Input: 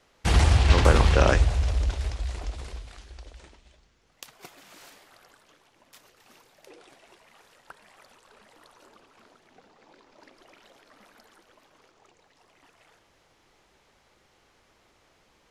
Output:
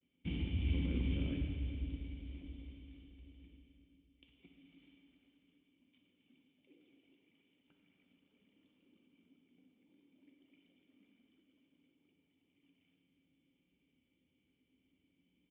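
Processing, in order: high-pass 66 Hz; gate with hold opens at -56 dBFS; peaking EQ 630 Hz -3.5 dB 1.6 oct; peak limiter -14.5 dBFS, peak gain reduction 8 dB; cascade formant filter i; feedback delay 519 ms, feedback 55%, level -18.5 dB; on a send at -1.5 dB: reverberation RT60 2.3 s, pre-delay 3 ms; on the sum: trim -3.5 dB

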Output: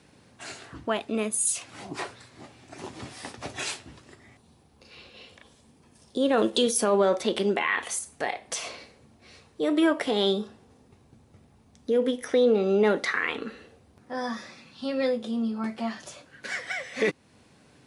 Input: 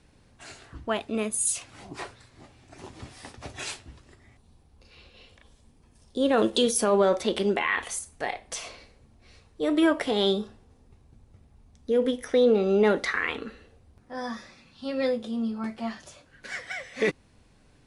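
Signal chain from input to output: high-pass 130 Hz 12 dB/octave; in parallel at +2 dB: compression, threshold -36 dBFS, peak gain reduction 18 dB; on the sum: trim -2 dB

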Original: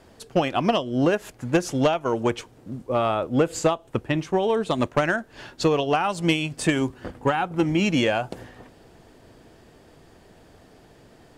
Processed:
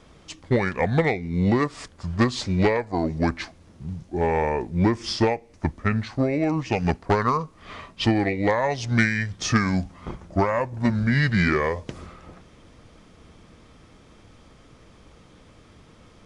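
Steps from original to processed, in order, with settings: tape speed -30%; peaking EQ 330 Hz -5 dB 1.9 oct; trim +3 dB

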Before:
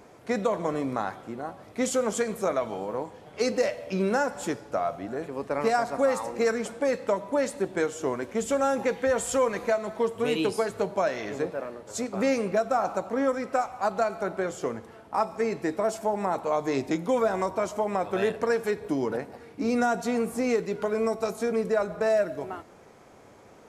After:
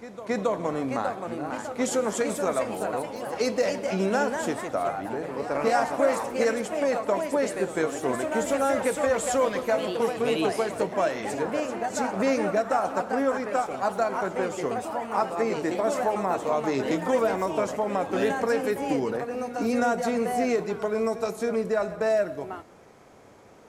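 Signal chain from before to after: ever faster or slower copies 645 ms, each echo +2 st, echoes 3, each echo -6 dB; pre-echo 273 ms -14.5 dB

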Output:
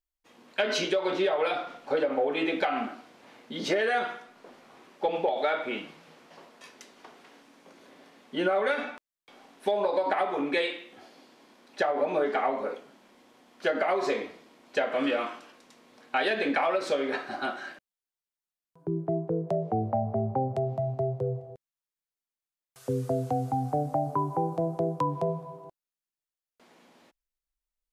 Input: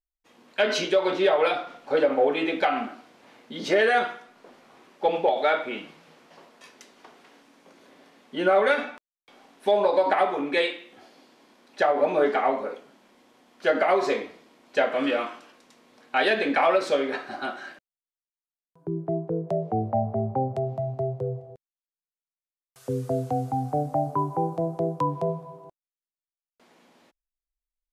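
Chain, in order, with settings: compression 5:1, threshold -23 dBFS, peak gain reduction 7 dB

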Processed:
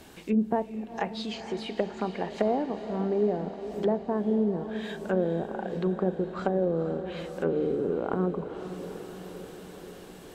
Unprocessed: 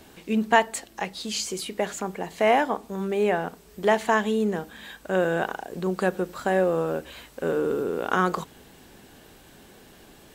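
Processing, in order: low-pass that closes with the level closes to 430 Hz, closed at -22 dBFS; echo that smears into a reverb 469 ms, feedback 67%, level -11 dB

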